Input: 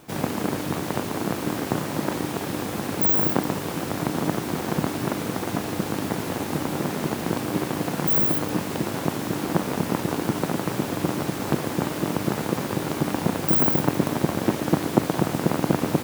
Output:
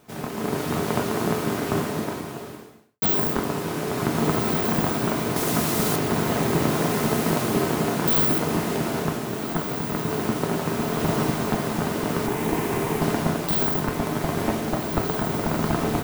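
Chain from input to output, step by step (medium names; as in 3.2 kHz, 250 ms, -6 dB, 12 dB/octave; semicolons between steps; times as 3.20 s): one-sided wavefolder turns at -15 dBFS; 5.36–5.96 s: treble shelf 4 kHz +11.5 dB; 12.26–13.02 s: static phaser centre 880 Hz, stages 8; echo that smears into a reverb 1573 ms, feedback 44%, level -5.5 dB; reverberation RT60 0.45 s, pre-delay 4 ms, DRR 4 dB; 1.80–3.02 s: fade out quadratic; level rider; trim -6.5 dB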